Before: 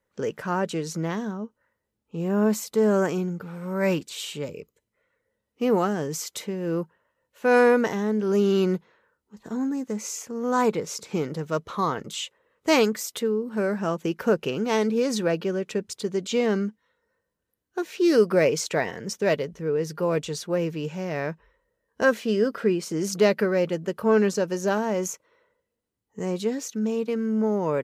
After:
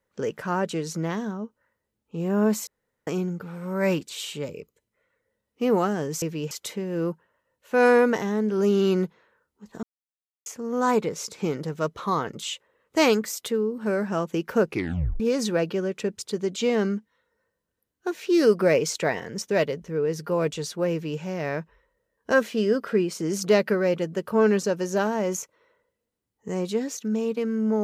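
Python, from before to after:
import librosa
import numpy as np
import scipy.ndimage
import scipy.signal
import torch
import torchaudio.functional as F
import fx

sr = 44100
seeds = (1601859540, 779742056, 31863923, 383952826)

y = fx.edit(x, sr, fx.room_tone_fill(start_s=2.67, length_s=0.4),
    fx.silence(start_s=9.54, length_s=0.63),
    fx.tape_stop(start_s=14.39, length_s=0.52),
    fx.duplicate(start_s=20.63, length_s=0.29, to_s=6.22), tone=tone)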